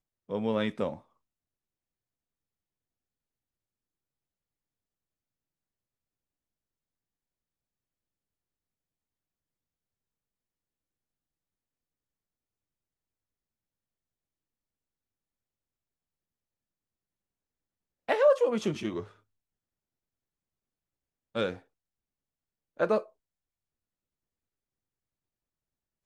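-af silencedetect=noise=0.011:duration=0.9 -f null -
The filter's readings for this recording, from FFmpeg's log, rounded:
silence_start: 0.95
silence_end: 18.08 | silence_duration: 17.13
silence_start: 19.04
silence_end: 21.35 | silence_duration: 2.32
silence_start: 21.56
silence_end: 22.80 | silence_duration: 1.24
silence_start: 23.02
silence_end: 26.05 | silence_duration: 3.03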